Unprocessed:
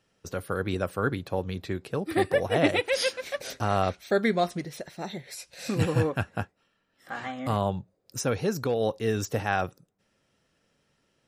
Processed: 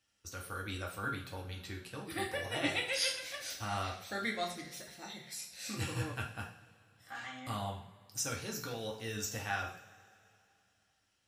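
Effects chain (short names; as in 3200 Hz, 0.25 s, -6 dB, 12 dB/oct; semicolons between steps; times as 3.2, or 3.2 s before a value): passive tone stack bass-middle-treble 5-5-5; two-slope reverb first 0.48 s, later 2.8 s, from -21 dB, DRR -1 dB; gain +1 dB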